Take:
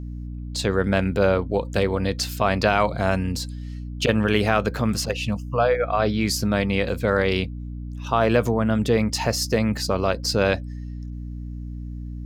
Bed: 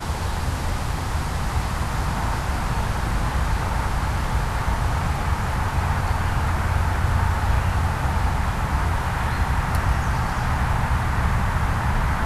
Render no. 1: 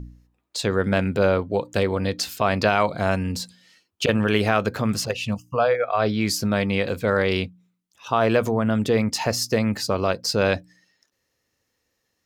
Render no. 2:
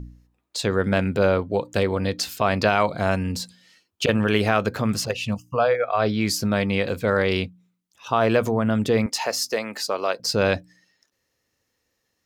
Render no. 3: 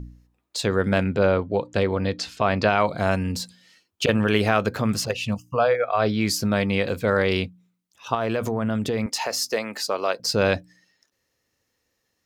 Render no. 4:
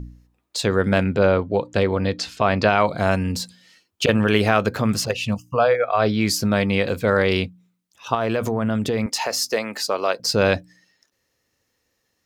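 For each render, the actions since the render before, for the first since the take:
de-hum 60 Hz, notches 5
9.06–10.20 s: high-pass 450 Hz
1.03–2.86 s: distance through air 84 m; 8.14–9.43 s: compression, threshold -20 dBFS
trim +2.5 dB

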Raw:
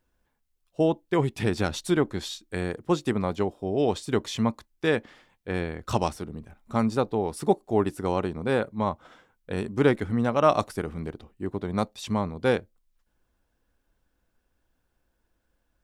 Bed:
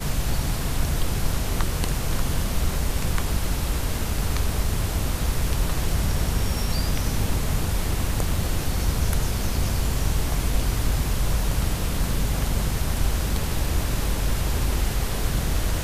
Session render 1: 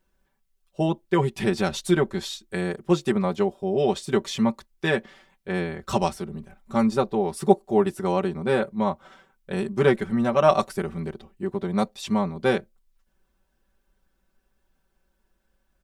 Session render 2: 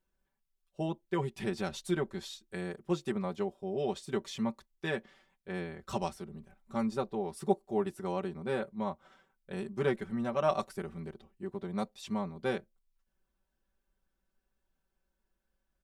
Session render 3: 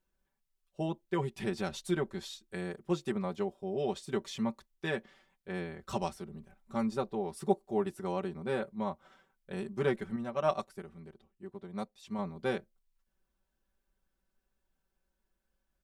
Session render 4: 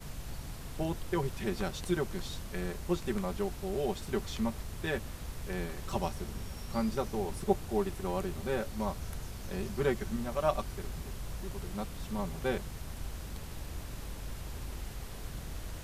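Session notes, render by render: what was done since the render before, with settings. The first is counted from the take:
comb 5.2 ms, depth 83%
trim -11 dB
10.16–12.19 s: upward expansion, over -40 dBFS
add bed -17.5 dB

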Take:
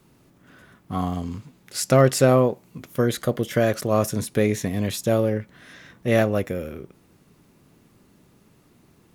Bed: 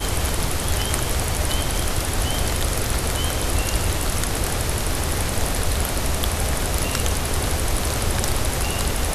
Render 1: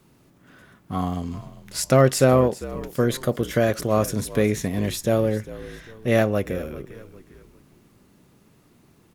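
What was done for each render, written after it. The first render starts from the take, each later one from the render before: frequency-shifting echo 399 ms, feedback 39%, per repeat -58 Hz, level -16.5 dB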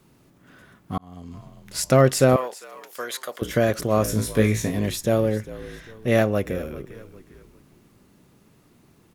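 0.98–1.78 s: fade in; 2.36–3.42 s: high-pass 890 Hz; 4.03–4.77 s: flutter echo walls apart 3.1 m, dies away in 0.24 s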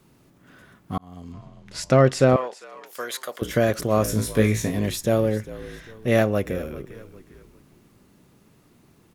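1.32–2.86 s: distance through air 75 m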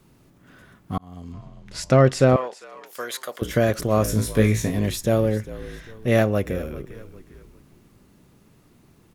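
bass shelf 82 Hz +7 dB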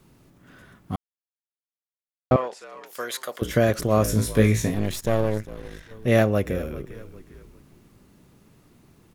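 0.96–2.31 s: mute; 4.74–5.91 s: partial rectifier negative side -12 dB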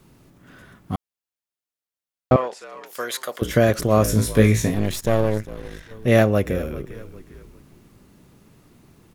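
trim +3 dB

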